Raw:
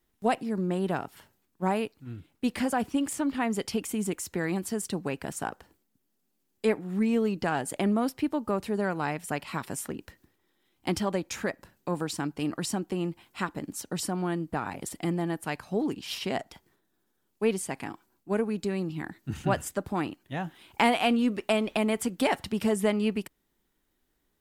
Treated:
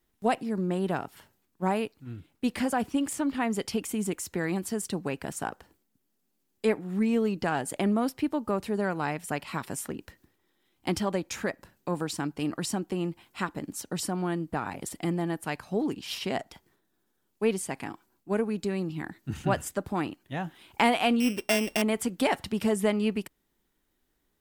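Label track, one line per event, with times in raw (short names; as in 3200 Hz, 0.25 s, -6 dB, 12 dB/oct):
21.200000	21.820000	sample sorter in blocks of 16 samples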